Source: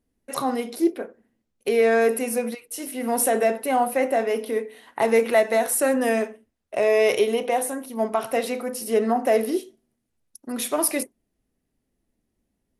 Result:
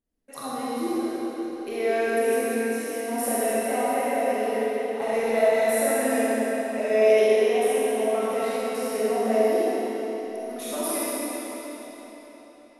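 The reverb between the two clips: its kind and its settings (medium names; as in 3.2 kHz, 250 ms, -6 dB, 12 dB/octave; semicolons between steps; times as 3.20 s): algorithmic reverb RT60 4.5 s, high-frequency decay 0.9×, pre-delay 5 ms, DRR -10 dB; trim -12 dB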